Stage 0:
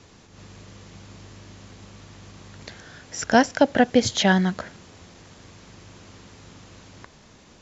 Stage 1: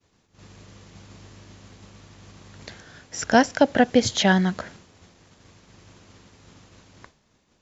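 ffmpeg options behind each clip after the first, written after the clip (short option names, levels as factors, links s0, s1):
-af "agate=range=0.0224:threshold=0.00891:ratio=3:detection=peak"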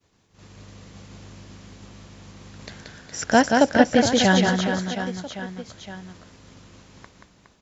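-af "aecho=1:1:180|414|718.2|1114|1628:0.631|0.398|0.251|0.158|0.1"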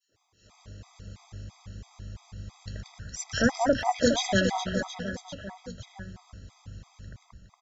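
-filter_complex "[0:a]asubboost=boost=7:cutoff=130,acrossover=split=220|2100[s0][s1][s2];[s1]adelay=80[s3];[s0]adelay=110[s4];[s4][s3][s2]amix=inputs=3:normalize=0,afftfilt=real='re*gt(sin(2*PI*3*pts/sr)*(1-2*mod(floor(b*sr/1024/650),2)),0)':imag='im*gt(sin(2*PI*3*pts/sr)*(1-2*mod(floor(b*sr/1024/650),2)),0)':win_size=1024:overlap=0.75,volume=0.794"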